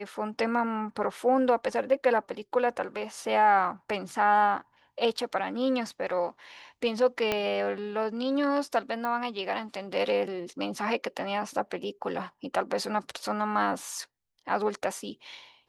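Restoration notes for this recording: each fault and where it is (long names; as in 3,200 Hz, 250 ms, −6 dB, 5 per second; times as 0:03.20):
0:07.32: click −12 dBFS
0:09.05: click −20 dBFS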